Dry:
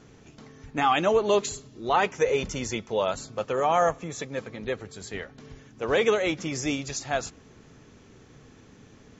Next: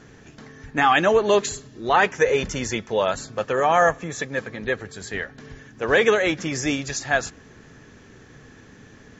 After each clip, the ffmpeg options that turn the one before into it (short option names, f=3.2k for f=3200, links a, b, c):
-af "equalizer=f=1.7k:w=4.9:g=10,volume=4dB"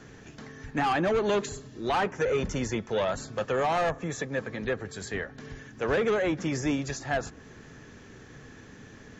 -filter_complex "[0:a]acrossover=split=220|1400[a][b][c];[b]asoftclip=type=tanh:threshold=-23dB[d];[c]acompressor=threshold=-37dB:ratio=6[e];[a][d][e]amix=inputs=3:normalize=0,volume=-1dB"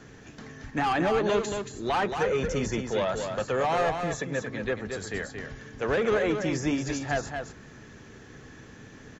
-af "aecho=1:1:227:0.501"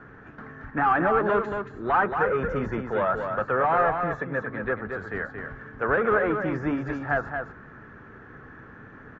-af "lowpass=f=1.4k:t=q:w=3.3"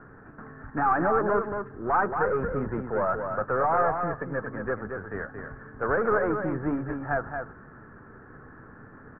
-af "aeval=exprs='if(lt(val(0),0),0.708*val(0),val(0))':c=same,lowpass=f=1.6k:w=0.5412,lowpass=f=1.6k:w=1.3066"